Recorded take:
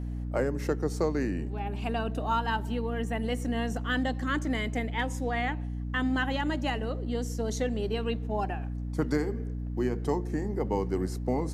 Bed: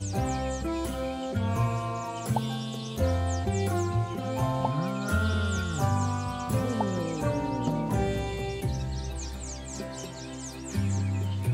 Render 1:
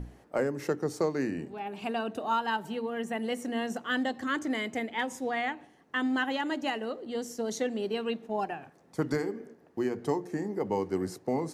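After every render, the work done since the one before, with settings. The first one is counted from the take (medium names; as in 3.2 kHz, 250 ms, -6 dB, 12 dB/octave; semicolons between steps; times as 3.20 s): hum notches 60/120/180/240/300 Hz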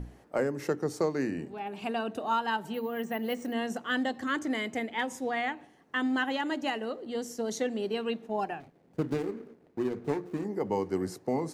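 2.74–3.53 s: careless resampling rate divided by 3×, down filtered, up hold; 8.60–10.45 s: median filter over 41 samples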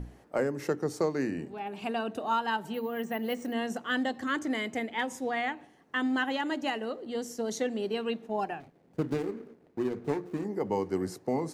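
no audible change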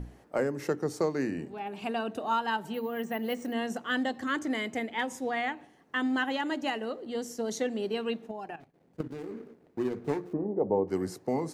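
8.31–9.31 s: level held to a coarse grid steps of 13 dB; 10.33–10.88 s: resonant low-pass 640 Hz, resonance Q 1.9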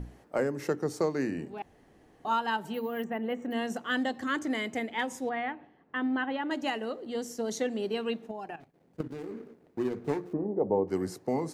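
1.62–2.25 s: room tone; 3.04–3.51 s: boxcar filter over 9 samples; 5.29–6.51 s: distance through air 360 m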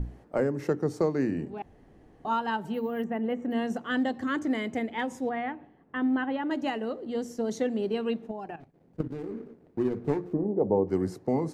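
tilt EQ -2 dB/octave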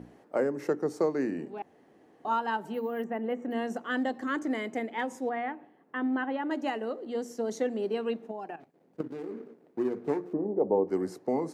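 high-pass 270 Hz 12 dB/octave; dynamic bell 3.4 kHz, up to -4 dB, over -53 dBFS, Q 1.4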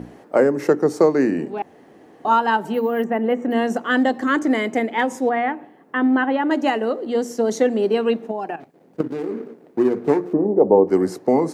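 trim +12 dB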